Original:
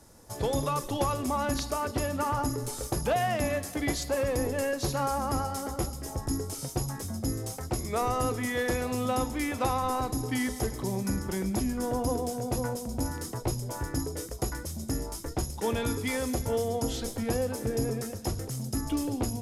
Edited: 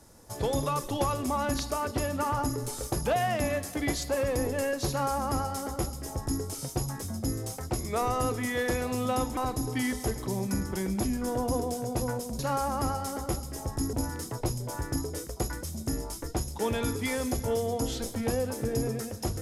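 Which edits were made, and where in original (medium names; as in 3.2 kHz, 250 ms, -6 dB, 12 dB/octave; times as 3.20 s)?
4.89–6.43 s: copy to 12.95 s
9.37–9.93 s: delete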